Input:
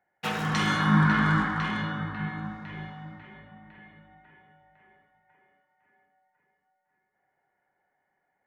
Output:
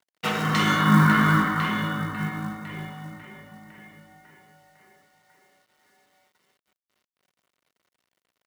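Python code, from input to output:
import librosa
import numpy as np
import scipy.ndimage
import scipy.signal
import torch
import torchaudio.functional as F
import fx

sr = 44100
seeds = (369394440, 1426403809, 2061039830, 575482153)

y = fx.quant_companded(x, sr, bits=6)
y = fx.low_shelf(y, sr, hz=66.0, db=-8.0)
y = fx.notch_comb(y, sr, f0_hz=830.0)
y = y * 10.0 ** (5.5 / 20.0)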